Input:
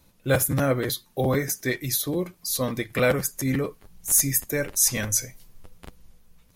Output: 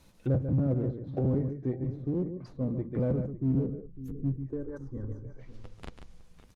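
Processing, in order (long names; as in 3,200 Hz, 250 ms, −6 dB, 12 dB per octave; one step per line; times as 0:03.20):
running median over 3 samples
0:04.42–0:05.25: phaser with its sweep stopped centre 660 Hz, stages 6
on a send: single-tap delay 143 ms −9 dB
on the sum: treble cut that deepens with the level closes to 300 Hz, closed at −26.5 dBFS
0:03.32–0:04.40: gain on a spectral selection 510–11,000 Hz −20 dB
slap from a distant wall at 95 metres, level −15 dB
in parallel at −11 dB: gain into a clipping stage and back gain 28.5 dB
on the sum: level −2 dB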